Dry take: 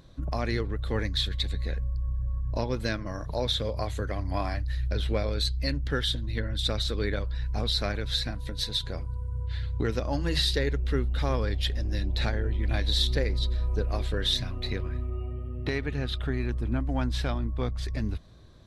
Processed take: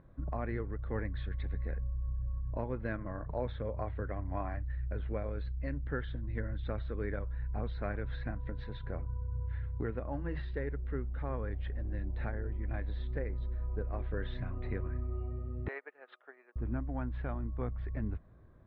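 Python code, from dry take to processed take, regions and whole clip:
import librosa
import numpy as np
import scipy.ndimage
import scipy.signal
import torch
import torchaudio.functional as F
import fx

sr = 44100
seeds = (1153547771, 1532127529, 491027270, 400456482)

y = fx.chain(x, sr, fx.highpass(hz=500.0, slope=24),
    fx.upward_expand(threshold_db=-45.0, expansion=2.5), at=(15.68, 16.56))
y = scipy.signal.sosfilt(scipy.signal.butter(4, 1900.0, 'lowpass', fs=sr, output='sos'), y)
y = fx.rider(y, sr, range_db=3, speed_s=0.5)
y = F.gain(torch.from_numpy(y), -7.0).numpy()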